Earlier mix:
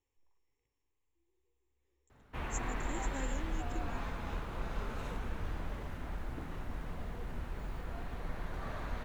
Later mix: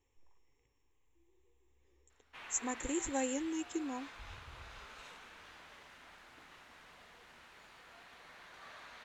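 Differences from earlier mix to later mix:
speech +8.5 dB; background: add band-pass filter 4.2 kHz, Q 0.66

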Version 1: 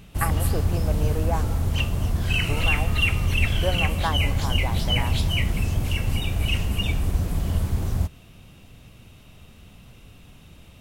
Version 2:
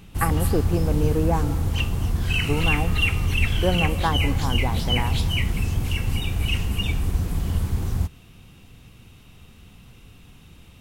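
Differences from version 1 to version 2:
speech: remove high-pass 980 Hz 6 dB/octave; master: add peaking EQ 610 Hz -9 dB 0.26 oct

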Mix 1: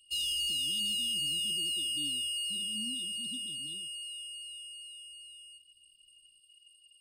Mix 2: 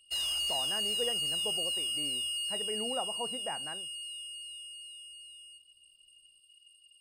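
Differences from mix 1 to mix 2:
speech: add low-pass 2.2 kHz 24 dB/octave; master: remove brick-wall FIR band-stop 370–2800 Hz

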